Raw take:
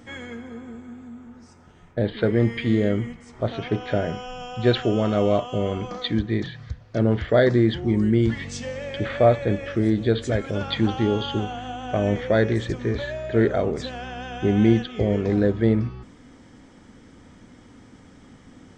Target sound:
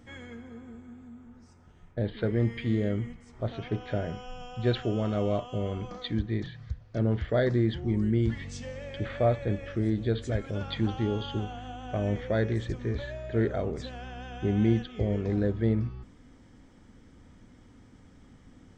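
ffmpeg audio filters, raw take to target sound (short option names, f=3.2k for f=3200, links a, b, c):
-af "lowshelf=f=100:g=11,volume=-9dB"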